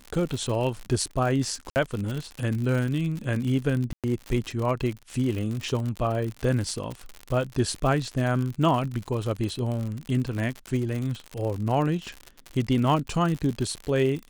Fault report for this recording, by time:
crackle 84/s -29 dBFS
1.7–1.76 gap 59 ms
3.93–4.04 gap 0.107 s

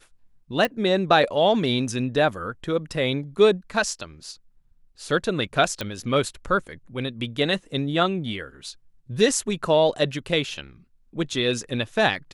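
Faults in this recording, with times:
0.65 pop
5.81 pop -13 dBFS

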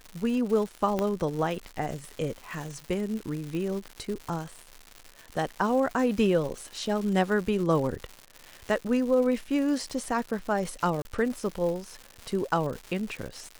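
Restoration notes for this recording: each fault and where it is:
crackle 270/s -34 dBFS
0.99 pop -14 dBFS
3.55 pop -23 dBFS
11.02–11.05 gap 31 ms

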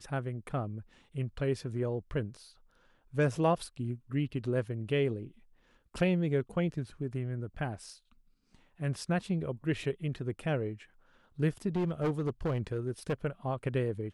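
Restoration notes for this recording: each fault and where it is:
11.76–13.13 clipped -26 dBFS

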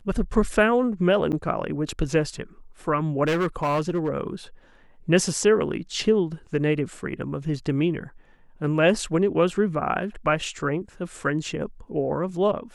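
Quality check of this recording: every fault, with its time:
1.32–1.33 gap 8.5 ms
3.27–4.09 clipped -19 dBFS

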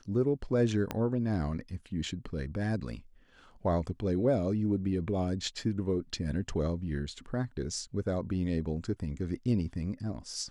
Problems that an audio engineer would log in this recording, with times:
0.91 pop -18 dBFS

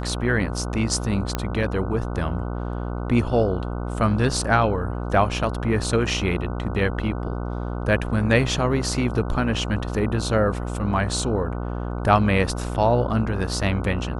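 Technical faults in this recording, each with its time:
buzz 60 Hz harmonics 25 -28 dBFS
1.35 pop -9 dBFS

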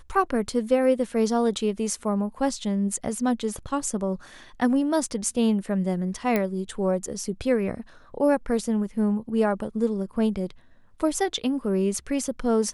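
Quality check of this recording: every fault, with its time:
6.36 pop -11 dBFS

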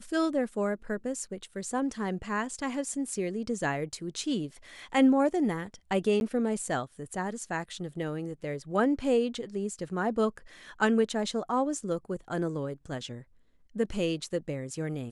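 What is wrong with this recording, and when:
6.2–6.21 gap 11 ms

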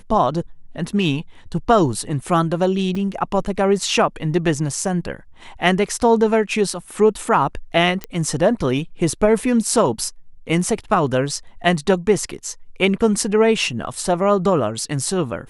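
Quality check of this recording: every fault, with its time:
2.95 gap 3.3 ms
8.04 pop -10 dBFS

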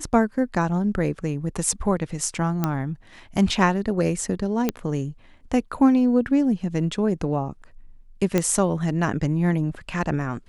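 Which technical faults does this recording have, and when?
2.64 pop -9 dBFS
4.69 pop -8 dBFS
8.38 pop -7 dBFS

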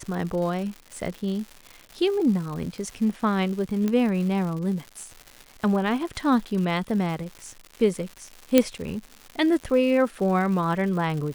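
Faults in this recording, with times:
crackle 250/s -33 dBFS
3.88 pop -14 dBFS
8.58 pop -3 dBFS

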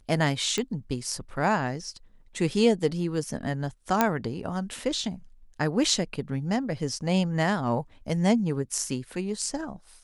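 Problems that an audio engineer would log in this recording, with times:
0.58 pop -14 dBFS
4.01 pop -6 dBFS

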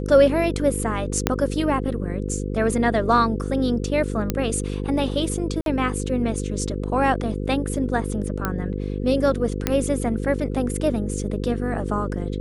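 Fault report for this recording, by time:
buzz 50 Hz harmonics 10 -27 dBFS
1.27 pop -2 dBFS
4.3 pop -7 dBFS
5.61–5.66 gap 52 ms
8.45 pop -9 dBFS
9.67 pop -5 dBFS

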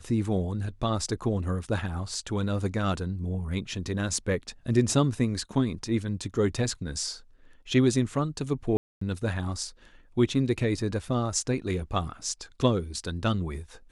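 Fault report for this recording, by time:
8.77–9.01 gap 0.244 s

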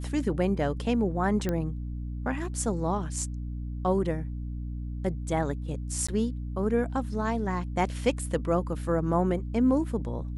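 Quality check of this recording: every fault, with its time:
hum 60 Hz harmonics 5 -34 dBFS
1.49 pop -16 dBFS
6.07–6.08 gap 15 ms

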